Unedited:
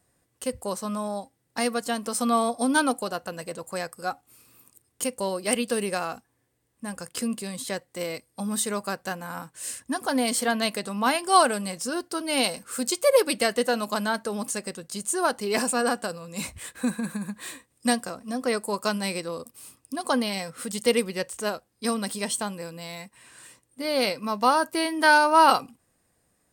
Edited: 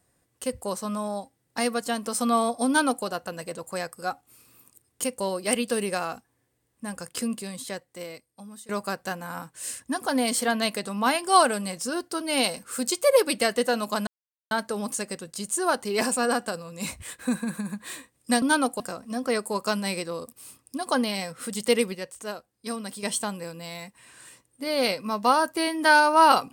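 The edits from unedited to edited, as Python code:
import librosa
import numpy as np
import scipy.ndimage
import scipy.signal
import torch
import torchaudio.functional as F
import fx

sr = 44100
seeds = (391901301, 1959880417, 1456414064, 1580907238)

y = fx.edit(x, sr, fx.duplicate(start_s=2.67, length_s=0.38, to_s=17.98),
    fx.fade_out_to(start_s=7.19, length_s=1.5, floor_db=-23.5),
    fx.insert_silence(at_s=14.07, length_s=0.44),
    fx.clip_gain(start_s=21.13, length_s=1.08, db=-6.0), tone=tone)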